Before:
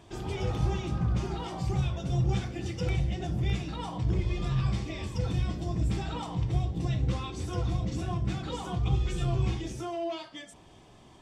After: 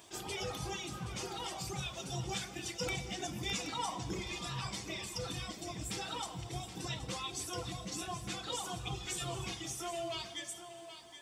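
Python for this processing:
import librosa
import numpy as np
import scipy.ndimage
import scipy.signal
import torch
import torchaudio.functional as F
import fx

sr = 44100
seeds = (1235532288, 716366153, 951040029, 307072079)

y = fx.riaa(x, sr, side='recording')
y = fx.dereverb_blind(y, sr, rt60_s=1.7)
y = fx.graphic_eq_15(y, sr, hz=(250, 1000, 6300), db=(8, 6, 5), at=(2.79, 4.24))
y = y + 10.0 ** (-11.0 / 20.0) * np.pad(y, (int(774 * sr / 1000.0), 0))[:len(y)]
y = fx.rev_plate(y, sr, seeds[0], rt60_s=3.7, hf_ratio=0.85, predelay_ms=0, drr_db=10.5)
y = fx.attack_slew(y, sr, db_per_s=310.0)
y = y * 10.0 ** (-2.0 / 20.0)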